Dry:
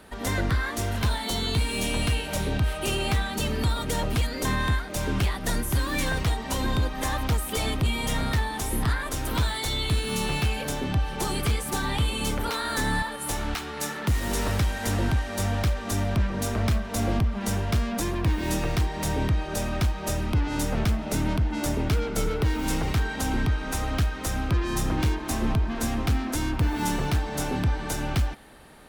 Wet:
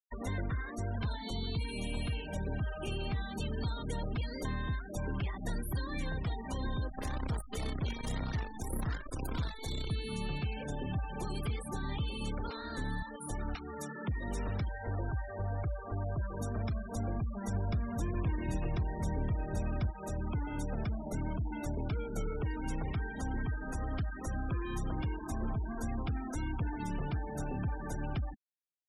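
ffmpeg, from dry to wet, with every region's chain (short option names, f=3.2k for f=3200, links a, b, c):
-filter_complex "[0:a]asettb=1/sr,asplit=3[a][b][c];[a]atrim=end=6.904[d];[b]atrim=start=6.9:end=9.9,asetpts=PTS-STARTPTS,afade=t=in:d=0.004:c=qsin,afade=t=out:st=2.996:d=0.004:c=qsin,adynamicequalizer=threshold=0.00447:dfrequency=2700:dqfactor=2.5:tfrequency=2700:tqfactor=2.5:attack=5:release=100:ratio=0.375:range=2:mode=cutabove:tftype=bell,acrusher=bits=5:dc=4:mix=0:aa=0.000001[e];[c]atrim=start=9.896[f];[d][e]acrossfade=d=0.004:c1=hsin:c2=qsin[g];[g][f]acrossfade=d=0.004:c1=qsin:c2=hsin,asettb=1/sr,asplit=3[h][i][j];[h]atrim=end=14.684[k];[i]atrim=start=14.68:end=16.4,asetpts=PTS-STARTPTS,afade=t=in:d=0.004:c=qsin,afade=t=out:st=1.716:d=0.004:c=qsin,lowpass=1.9k,equalizer=f=220:w=2.1:g=-12.5[l];[j]atrim=start=16.396[m];[k][l]acrossfade=d=0.004:c1=hsin:c2=qsin[n];[n][m]acrossfade=d=0.004:c1=qsin:c2=hsin,asettb=1/sr,asplit=3[o][p][q];[o]atrim=end=17.544[r];[p]atrim=start=17.54:end=19.9,asetpts=PTS-STARTPTS,afade=t=in:d=0.004:c=qsin,afade=t=out:st=2.356:d=0.004:c=qsin,lowshelf=f=270:g=10,aecho=1:1:226|545:0.251|0.316,atrim=end_sample=104076[s];[q]atrim=start=19.896[t];[r][s]acrossfade=d=0.004:c1=hsin:c2=qsin[u];[u][t]acrossfade=d=0.004:c1=qsin:c2=hsin,afftfilt=real='re*gte(hypot(re,im),0.0398)':imag='im*gte(hypot(re,im),0.0398)':win_size=1024:overlap=0.75,acrossover=split=170|450[v][w][x];[v]acompressor=threshold=-30dB:ratio=4[y];[w]acompressor=threshold=-40dB:ratio=4[z];[x]acompressor=threshold=-40dB:ratio=4[aa];[y][z][aa]amix=inputs=3:normalize=0,volume=-4dB"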